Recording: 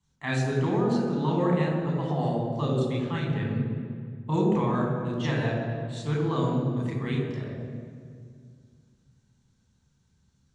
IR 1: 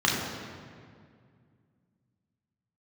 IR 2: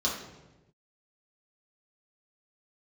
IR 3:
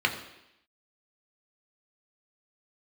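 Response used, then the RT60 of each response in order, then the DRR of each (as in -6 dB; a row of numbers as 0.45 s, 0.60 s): 1; 2.1 s, 1.1 s, 0.85 s; -4.0 dB, -5.5 dB, 2.0 dB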